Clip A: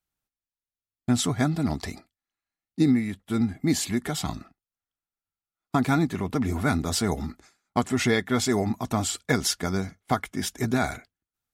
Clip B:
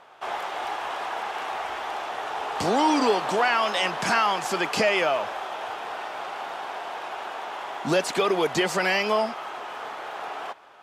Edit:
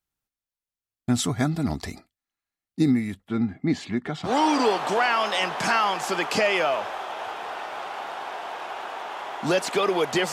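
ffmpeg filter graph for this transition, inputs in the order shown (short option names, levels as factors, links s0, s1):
-filter_complex "[0:a]asplit=3[s0][s1][s2];[s0]afade=t=out:st=3.27:d=0.02[s3];[s1]highpass=110,lowpass=3000,afade=t=in:st=3.27:d=0.02,afade=t=out:st=4.33:d=0.02[s4];[s2]afade=t=in:st=4.33:d=0.02[s5];[s3][s4][s5]amix=inputs=3:normalize=0,apad=whole_dur=10.32,atrim=end=10.32,atrim=end=4.33,asetpts=PTS-STARTPTS[s6];[1:a]atrim=start=2.65:end=8.74,asetpts=PTS-STARTPTS[s7];[s6][s7]acrossfade=d=0.1:c1=tri:c2=tri"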